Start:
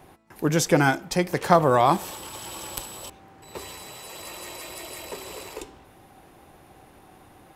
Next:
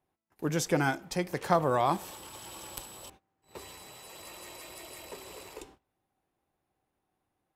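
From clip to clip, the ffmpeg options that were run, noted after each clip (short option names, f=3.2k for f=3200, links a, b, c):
-af "agate=range=-22dB:threshold=-45dB:ratio=16:detection=peak,volume=-8dB"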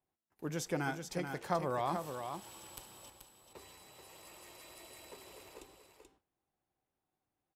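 -af "aecho=1:1:433:0.447,volume=-8.5dB"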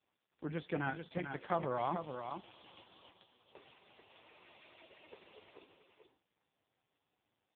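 -af "aemphasis=mode=production:type=75fm" -ar 8000 -c:a libopencore_amrnb -b:a 4750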